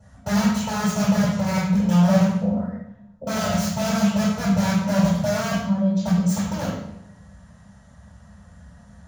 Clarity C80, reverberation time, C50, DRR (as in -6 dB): 4.0 dB, 0.80 s, 1.0 dB, -16.5 dB